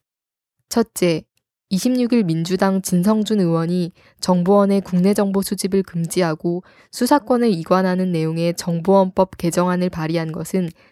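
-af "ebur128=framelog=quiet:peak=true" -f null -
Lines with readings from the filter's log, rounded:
Integrated loudness:
  I:         -18.9 LUFS
  Threshold: -29.0 LUFS
Loudness range:
  LRA:         1.6 LU
  Threshold: -38.7 LUFS
  LRA low:   -19.5 LUFS
  LRA high:  -17.9 LUFS
True peak:
  Peak:       -1.3 dBFS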